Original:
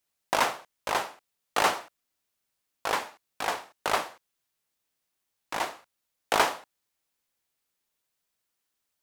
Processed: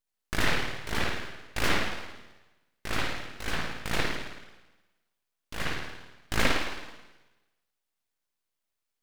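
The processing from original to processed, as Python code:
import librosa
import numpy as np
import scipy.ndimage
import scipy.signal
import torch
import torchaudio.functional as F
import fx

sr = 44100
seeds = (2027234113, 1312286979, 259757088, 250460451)

y = fx.rev_spring(x, sr, rt60_s=1.1, pass_ms=(53,), chirp_ms=55, drr_db=-7.0)
y = np.abs(y)
y = y * librosa.db_to_amplitude(-5.0)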